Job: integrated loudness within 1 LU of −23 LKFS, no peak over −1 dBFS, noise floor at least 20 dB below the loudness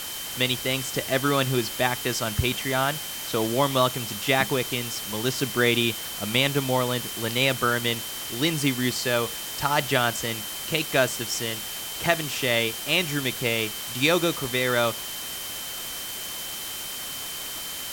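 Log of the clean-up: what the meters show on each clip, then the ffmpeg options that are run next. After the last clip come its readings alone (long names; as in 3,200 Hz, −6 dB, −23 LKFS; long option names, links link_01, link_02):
interfering tone 3,100 Hz; level of the tone −38 dBFS; background noise floor −34 dBFS; target noise floor −45 dBFS; integrated loudness −25.0 LKFS; sample peak −4.0 dBFS; target loudness −23.0 LKFS
→ -af "bandreject=frequency=3100:width=30"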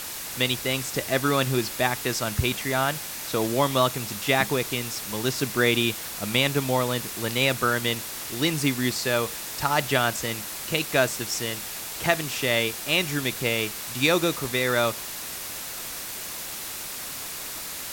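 interfering tone none found; background noise floor −35 dBFS; target noise floor −46 dBFS
→ -af "afftdn=noise_reduction=11:noise_floor=-35"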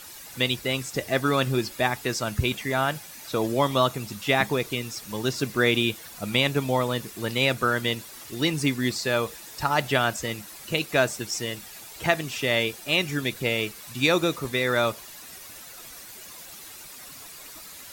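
background noise floor −44 dBFS; target noise floor −46 dBFS
→ -af "afftdn=noise_reduction=6:noise_floor=-44"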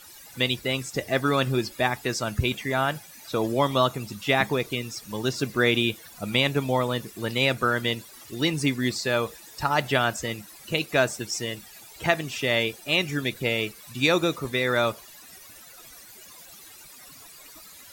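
background noise floor −48 dBFS; integrated loudness −25.5 LKFS; sample peak −4.5 dBFS; target loudness −23.0 LKFS
→ -af "volume=2.5dB"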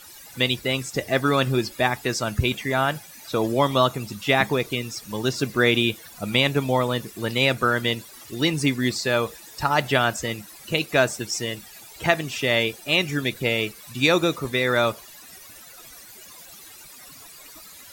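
integrated loudness −23.0 LKFS; sample peak −2.0 dBFS; background noise floor −45 dBFS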